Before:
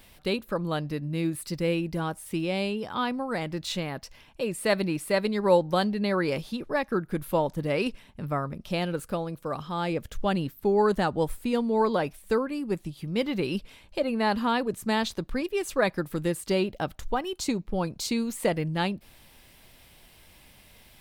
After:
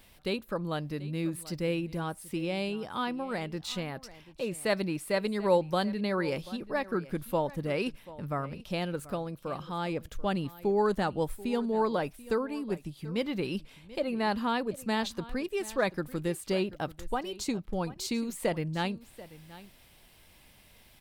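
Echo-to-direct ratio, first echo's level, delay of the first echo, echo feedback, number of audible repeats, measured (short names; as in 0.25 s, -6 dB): -18.0 dB, -18.0 dB, 0.736 s, no steady repeat, 1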